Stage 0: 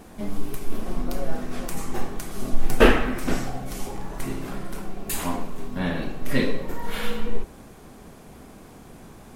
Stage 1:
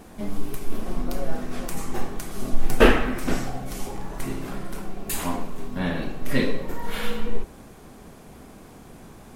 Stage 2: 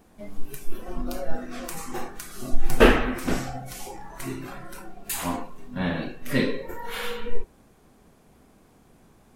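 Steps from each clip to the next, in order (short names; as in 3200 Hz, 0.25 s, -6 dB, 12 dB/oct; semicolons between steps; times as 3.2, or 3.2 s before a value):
nothing audible
spectral noise reduction 11 dB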